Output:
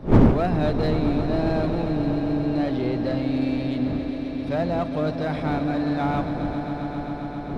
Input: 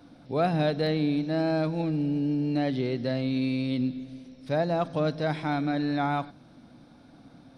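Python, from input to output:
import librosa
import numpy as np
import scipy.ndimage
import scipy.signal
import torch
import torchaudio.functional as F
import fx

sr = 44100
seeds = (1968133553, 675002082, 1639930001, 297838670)

p1 = fx.dmg_wind(x, sr, seeds[0], corner_hz=280.0, level_db=-27.0)
p2 = fx.high_shelf(p1, sr, hz=4200.0, db=-8.0)
p3 = np.clip(10.0 ** (27.0 / 20.0) * p2, -1.0, 1.0) / 10.0 ** (27.0 / 20.0)
p4 = p2 + (p3 * 10.0 ** (-3.0 / 20.0))
p5 = fx.echo_swell(p4, sr, ms=133, loudest=5, wet_db=-13.0)
y = p5 * 10.0 ** (-2.0 / 20.0)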